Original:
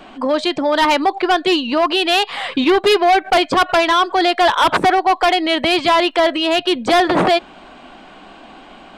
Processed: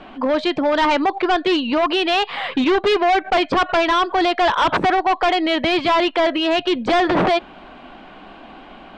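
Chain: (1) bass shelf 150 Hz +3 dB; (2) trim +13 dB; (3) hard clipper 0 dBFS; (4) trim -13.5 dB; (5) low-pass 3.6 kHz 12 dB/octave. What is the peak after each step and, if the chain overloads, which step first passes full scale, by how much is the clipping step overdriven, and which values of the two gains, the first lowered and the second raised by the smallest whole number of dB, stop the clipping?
-7.5 dBFS, +5.5 dBFS, 0.0 dBFS, -13.5 dBFS, -12.5 dBFS; step 2, 5.5 dB; step 2 +7 dB, step 4 -7.5 dB

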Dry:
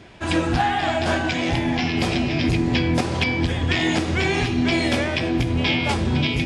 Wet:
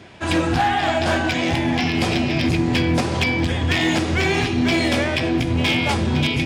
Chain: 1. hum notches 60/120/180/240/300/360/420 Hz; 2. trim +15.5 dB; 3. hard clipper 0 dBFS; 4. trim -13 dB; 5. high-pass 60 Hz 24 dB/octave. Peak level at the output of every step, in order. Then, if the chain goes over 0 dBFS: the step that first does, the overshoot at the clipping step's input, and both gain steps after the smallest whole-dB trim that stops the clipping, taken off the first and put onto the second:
-8.0 dBFS, +7.5 dBFS, 0.0 dBFS, -13.0 dBFS, -6.5 dBFS; step 2, 7.5 dB; step 2 +7.5 dB, step 4 -5 dB

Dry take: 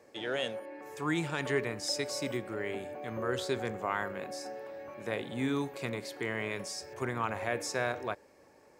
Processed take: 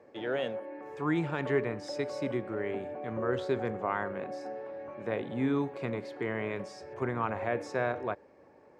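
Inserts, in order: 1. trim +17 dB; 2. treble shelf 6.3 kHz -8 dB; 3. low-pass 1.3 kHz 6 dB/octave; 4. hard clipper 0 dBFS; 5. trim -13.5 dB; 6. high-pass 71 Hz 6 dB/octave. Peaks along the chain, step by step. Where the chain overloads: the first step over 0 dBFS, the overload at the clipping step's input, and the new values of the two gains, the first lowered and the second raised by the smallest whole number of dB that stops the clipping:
-0.5 dBFS, -1.0 dBFS, -3.5 dBFS, -3.5 dBFS, -17.0 dBFS, -17.0 dBFS; nothing clips

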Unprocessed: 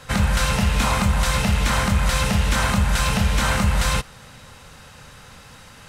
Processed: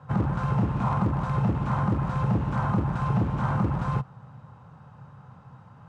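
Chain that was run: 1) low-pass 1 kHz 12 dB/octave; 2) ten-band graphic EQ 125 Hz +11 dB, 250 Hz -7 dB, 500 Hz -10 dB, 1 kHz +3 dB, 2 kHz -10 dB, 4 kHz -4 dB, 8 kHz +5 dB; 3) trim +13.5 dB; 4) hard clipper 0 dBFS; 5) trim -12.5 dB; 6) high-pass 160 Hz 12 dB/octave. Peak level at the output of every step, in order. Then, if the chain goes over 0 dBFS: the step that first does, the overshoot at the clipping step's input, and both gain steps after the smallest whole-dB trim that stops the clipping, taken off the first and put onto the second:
-9.0 dBFS, -4.0 dBFS, +9.5 dBFS, 0.0 dBFS, -12.5 dBFS, -12.5 dBFS; step 3, 9.5 dB; step 3 +3.5 dB, step 5 -2.5 dB

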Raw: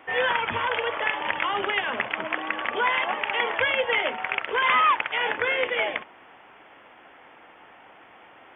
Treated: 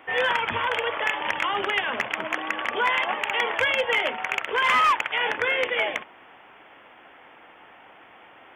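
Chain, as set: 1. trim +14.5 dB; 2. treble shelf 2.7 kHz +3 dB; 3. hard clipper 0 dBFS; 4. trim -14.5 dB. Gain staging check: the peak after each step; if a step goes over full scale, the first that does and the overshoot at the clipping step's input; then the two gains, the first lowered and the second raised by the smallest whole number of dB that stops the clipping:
+3.0 dBFS, +4.0 dBFS, 0.0 dBFS, -14.5 dBFS; step 1, 4.0 dB; step 1 +10.5 dB, step 4 -10.5 dB

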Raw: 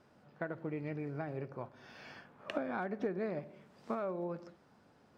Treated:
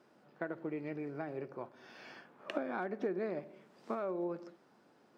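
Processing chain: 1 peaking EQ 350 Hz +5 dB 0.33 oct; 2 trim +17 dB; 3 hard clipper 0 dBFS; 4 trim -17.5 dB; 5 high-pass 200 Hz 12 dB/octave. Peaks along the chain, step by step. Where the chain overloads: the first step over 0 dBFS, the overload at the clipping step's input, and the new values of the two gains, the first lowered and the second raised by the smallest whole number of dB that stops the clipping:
-20.5 dBFS, -3.5 dBFS, -3.5 dBFS, -21.0 dBFS, -22.5 dBFS; nothing clips

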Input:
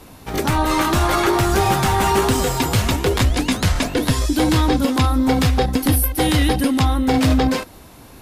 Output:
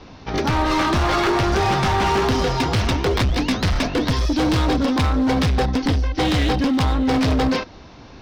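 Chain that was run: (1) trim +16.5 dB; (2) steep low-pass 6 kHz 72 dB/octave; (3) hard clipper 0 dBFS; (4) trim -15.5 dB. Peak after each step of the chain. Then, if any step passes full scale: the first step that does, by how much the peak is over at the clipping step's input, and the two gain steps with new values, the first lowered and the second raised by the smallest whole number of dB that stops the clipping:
+8.0 dBFS, +8.5 dBFS, 0.0 dBFS, -15.5 dBFS; step 1, 8.5 dB; step 1 +7.5 dB, step 4 -6.5 dB

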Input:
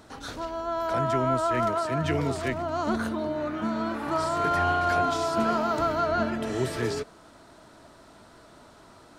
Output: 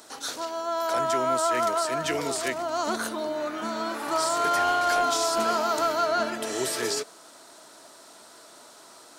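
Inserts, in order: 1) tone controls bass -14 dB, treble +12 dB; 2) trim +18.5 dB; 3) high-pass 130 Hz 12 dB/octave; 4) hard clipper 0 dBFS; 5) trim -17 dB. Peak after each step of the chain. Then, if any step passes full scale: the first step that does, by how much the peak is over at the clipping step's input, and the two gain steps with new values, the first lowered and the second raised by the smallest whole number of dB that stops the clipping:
-14.5 dBFS, +4.0 dBFS, +4.5 dBFS, 0.0 dBFS, -17.0 dBFS; step 2, 4.5 dB; step 2 +13.5 dB, step 5 -12 dB

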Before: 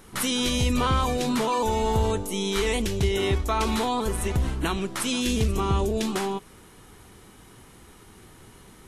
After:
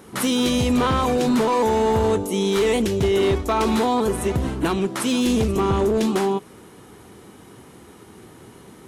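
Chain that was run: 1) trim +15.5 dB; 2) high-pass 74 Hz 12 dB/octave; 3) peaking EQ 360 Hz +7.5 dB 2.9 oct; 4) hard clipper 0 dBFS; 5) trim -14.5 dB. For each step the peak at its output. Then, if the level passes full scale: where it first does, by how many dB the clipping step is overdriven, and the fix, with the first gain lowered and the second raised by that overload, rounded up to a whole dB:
+2.5 dBFS, +4.0 dBFS, +10.0 dBFS, 0.0 dBFS, -14.5 dBFS; step 1, 10.0 dB; step 1 +5.5 dB, step 5 -4.5 dB

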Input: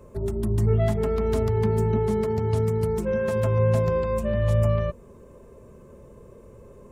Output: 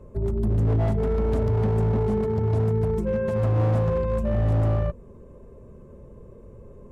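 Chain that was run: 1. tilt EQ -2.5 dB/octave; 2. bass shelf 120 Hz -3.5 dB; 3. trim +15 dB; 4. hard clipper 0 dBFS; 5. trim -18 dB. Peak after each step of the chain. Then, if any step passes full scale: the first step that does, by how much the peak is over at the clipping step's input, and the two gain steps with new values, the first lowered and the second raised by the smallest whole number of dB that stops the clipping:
-3.5 dBFS, -5.5 dBFS, +9.5 dBFS, 0.0 dBFS, -18.0 dBFS; step 3, 9.5 dB; step 3 +5 dB, step 5 -8 dB

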